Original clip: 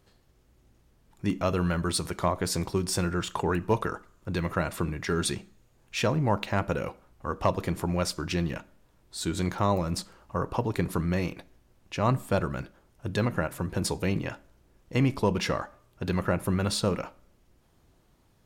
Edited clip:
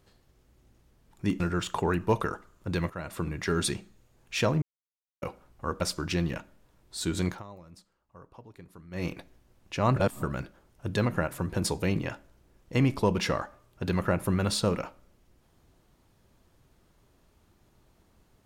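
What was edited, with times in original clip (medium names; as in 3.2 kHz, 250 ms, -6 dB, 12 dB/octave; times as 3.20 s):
1.40–3.01 s: delete
4.51–4.99 s: fade in, from -15.5 dB
6.23–6.83 s: mute
7.42–8.01 s: delete
9.47–11.27 s: dip -21.5 dB, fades 0.16 s
12.16–12.43 s: reverse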